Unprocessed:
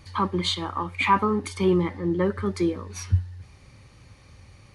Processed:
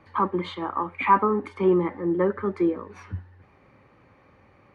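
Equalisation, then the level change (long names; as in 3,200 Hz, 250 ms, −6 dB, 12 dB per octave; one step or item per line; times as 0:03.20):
three-way crossover with the lows and the highs turned down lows −13 dB, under 200 Hz, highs −20 dB, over 2,300 Hz
low-shelf EQ 92 Hz −7 dB
high-shelf EQ 4,100 Hz −9.5 dB
+3.0 dB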